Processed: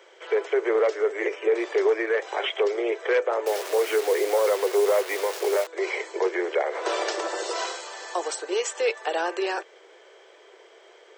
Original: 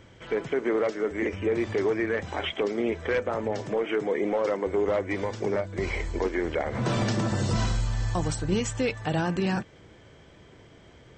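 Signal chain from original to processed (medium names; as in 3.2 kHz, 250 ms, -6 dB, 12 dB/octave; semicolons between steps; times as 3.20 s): bass shelf 490 Hz +3.5 dB; 3.46–5.67 s: word length cut 6-bit, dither none; steep high-pass 370 Hz 72 dB/octave; trim +3 dB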